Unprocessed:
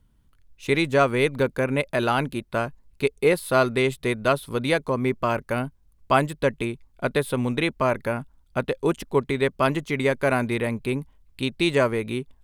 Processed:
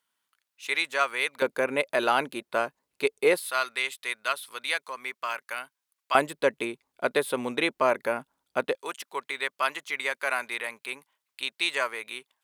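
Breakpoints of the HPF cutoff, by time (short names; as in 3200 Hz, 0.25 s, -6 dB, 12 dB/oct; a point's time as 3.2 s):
1100 Hz
from 1.42 s 420 Hz
from 3.39 s 1400 Hz
from 6.15 s 380 Hz
from 8.75 s 1100 Hz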